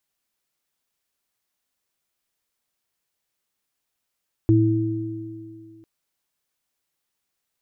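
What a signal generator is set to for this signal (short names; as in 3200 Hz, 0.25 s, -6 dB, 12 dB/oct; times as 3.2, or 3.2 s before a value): sine partials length 1.35 s, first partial 112 Hz, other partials 326 Hz, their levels 0 dB, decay 2.04 s, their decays 2.51 s, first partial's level -14.5 dB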